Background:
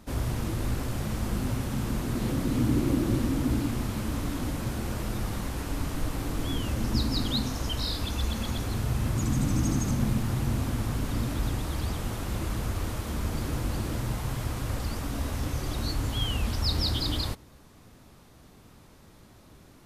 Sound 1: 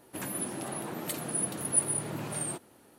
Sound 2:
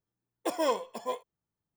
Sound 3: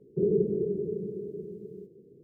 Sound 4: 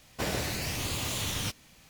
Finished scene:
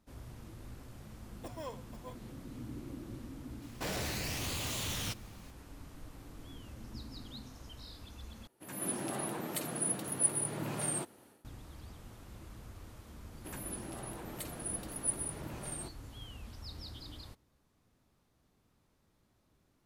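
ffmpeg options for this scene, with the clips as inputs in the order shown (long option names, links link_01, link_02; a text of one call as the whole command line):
ffmpeg -i bed.wav -i cue0.wav -i cue1.wav -i cue2.wav -i cue3.wav -filter_complex "[1:a]asplit=2[link_01][link_02];[0:a]volume=-19.5dB[link_03];[2:a]acompressor=mode=upward:threshold=-51dB:ratio=2.5:attack=3.2:release=140:knee=2.83:detection=peak[link_04];[4:a]asoftclip=type=hard:threshold=-30.5dB[link_05];[link_01]dynaudnorm=framelen=200:gausssize=3:maxgain=15dB[link_06];[link_03]asplit=2[link_07][link_08];[link_07]atrim=end=8.474[link_09];[link_06]atrim=end=2.98,asetpts=PTS-STARTPTS,volume=-15.5dB[link_10];[link_08]atrim=start=11.446[link_11];[link_04]atrim=end=1.76,asetpts=PTS-STARTPTS,volume=-16dB,afade=type=in:duration=0.004:curve=hsin,afade=type=out:start_time=1.756:duration=0.004:curve=hsin,adelay=980[link_12];[link_05]atrim=end=1.89,asetpts=PTS-STARTPTS,volume=-3dB,afade=type=in:duration=0.004:curve=hsin,afade=type=out:start_time=1.886:duration=0.004:curve=hsin,adelay=3620[link_13];[link_02]atrim=end=2.98,asetpts=PTS-STARTPTS,volume=-8dB,afade=type=in:duration=0.004:curve=hsin,afade=type=out:start_time=2.976:duration=0.004:curve=hsin,adelay=13310[link_14];[link_09][link_10]acrossfade=duration=0.004:curve1=hsin:curve2=hsin[link_15];[link_15][link_11]acrossfade=duration=0.004:curve1=hsin:curve2=hsin[link_16];[link_16][link_12][link_13][link_14]amix=inputs=4:normalize=0" out.wav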